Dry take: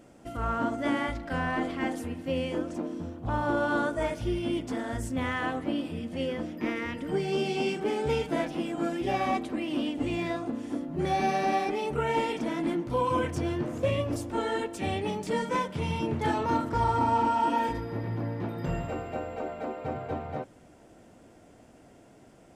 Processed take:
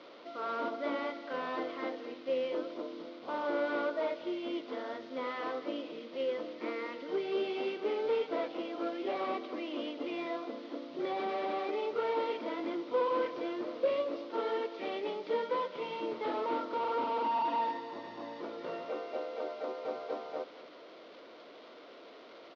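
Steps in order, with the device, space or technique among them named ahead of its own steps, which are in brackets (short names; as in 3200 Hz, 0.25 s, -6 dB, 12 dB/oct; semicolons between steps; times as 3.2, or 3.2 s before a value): digital answering machine (BPF 300–3200 Hz; delta modulation 32 kbps, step -43 dBFS; speaker cabinet 400–4200 Hz, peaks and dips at 500 Hz +3 dB, 800 Hz -9 dB, 1700 Hz -9 dB, 2600 Hz -5 dB); 17.24–18.4 comb 1.1 ms, depth 56%; echo 0.223 s -16 dB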